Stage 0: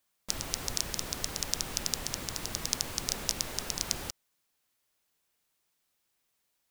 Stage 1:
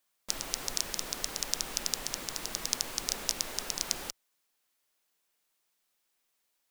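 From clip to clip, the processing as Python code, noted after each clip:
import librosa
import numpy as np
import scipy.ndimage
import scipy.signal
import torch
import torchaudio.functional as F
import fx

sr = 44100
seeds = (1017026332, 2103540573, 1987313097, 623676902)

y = fx.peak_eq(x, sr, hz=83.0, db=-13.5, octaves=1.9)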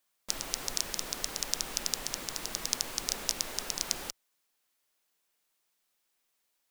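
y = x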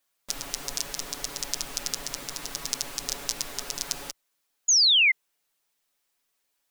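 y = x + 0.65 * np.pad(x, (int(7.1 * sr / 1000.0), 0))[:len(x)]
y = fx.spec_paint(y, sr, seeds[0], shape='fall', start_s=4.68, length_s=0.44, low_hz=2000.0, high_hz=7000.0, level_db=-19.0)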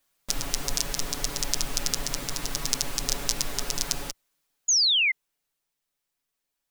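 y = fx.low_shelf(x, sr, hz=180.0, db=11.0)
y = fx.rider(y, sr, range_db=5, speed_s=2.0)
y = F.gain(torch.from_numpy(y), -2.0).numpy()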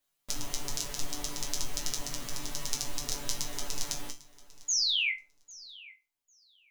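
y = fx.resonator_bank(x, sr, root=43, chord='major', decay_s=0.25)
y = fx.echo_feedback(y, sr, ms=799, feedback_pct=16, wet_db=-20.5)
y = F.gain(torch.from_numpy(y), 5.0).numpy()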